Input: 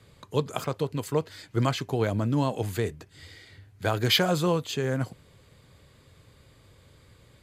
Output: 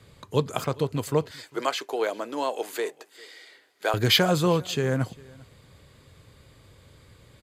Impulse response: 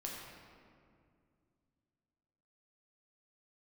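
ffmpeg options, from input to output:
-filter_complex "[0:a]asettb=1/sr,asplit=3[link_01][link_02][link_03];[link_01]atrim=end=1.314[link_04];[link_02]atrim=start=1.31:end=3.94,asetpts=PTS-STARTPTS,afade=type=in:duration=0.004:curve=qsin,afade=type=out:start_time=2.626:duration=0.004:curve=qsin,highpass=frequency=380:width=0.5412,highpass=frequency=380:width=1.3066[link_05];[link_03]atrim=start=3.936[link_06];[link_04][link_05]acrossfade=duration=0.004:curve1=hsin:curve2=qsin[link_07];[link_07][link_06]acrossfade=duration=0.004:curve1=qsin:curve2=hsin,aecho=1:1:400:0.0631,volume=2.5dB"

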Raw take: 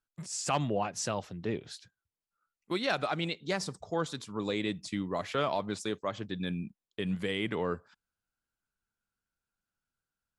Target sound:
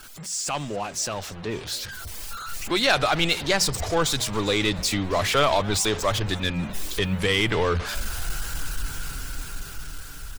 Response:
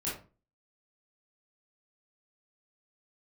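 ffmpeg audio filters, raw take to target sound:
-filter_complex "[0:a]aeval=exprs='val(0)+0.5*0.0126*sgn(val(0))':channel_layout=same,afftfilt=real='re*gte(hypot(re,im),0.00224)':imag='im*gte(hypot(re,im),0.00224)':win_size=1024:overlap=0.75,asubboost=boost=9.5:cutoff=66,deesser=0.25,highshelf=frequency=2000:gain=6.5,bandreject=frequency=60:width_type=h:width=6,bandreject=frequency=120:width_type=h:width=6,bandreject=frequency=180:width_type=h:width=6,dynaudnorm=framelen=430:gausssize=9:maxgain=10.5dB,asplit=2[link_01][link_02];[link_02]aeval=exprs='clip(val(0),-1,0.0668)':channel_layout=same,volume=-7.5dB[link_03];[link_01][link_03]amix=inputs=2:normalize=0,asplit=4[link_04][link_05][link_06][link_07];[link_05]adelay=275,afreqshift=130,volume=-22dB[link_08];[link_06]adelay=550,afreqshift=260,volume=-28dB[link_09];[link_07]adelay=825,afreqshift=390,volume=-34dB[link_10];[link_04][link_08][link_09][link_10]amix=inputs=4:normalize=0,volume=-4dB"

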